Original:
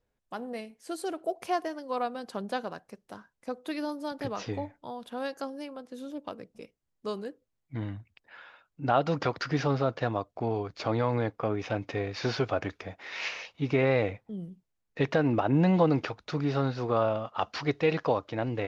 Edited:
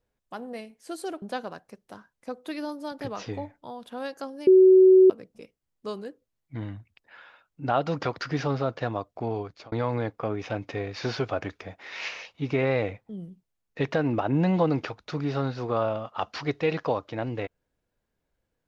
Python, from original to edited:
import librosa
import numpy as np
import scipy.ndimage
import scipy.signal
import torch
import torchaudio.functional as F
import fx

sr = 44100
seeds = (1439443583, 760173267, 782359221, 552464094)

y = fx.edit(x, sr, fx.cut(start_s=1.22, length_s=1.2),
    fx.bleep(start_s=5.67, length_s=0.63, hz=375.0, db=-11.0),
    fx.fade_out_span(start_s=10.61, length_s=0.31), tone=tone)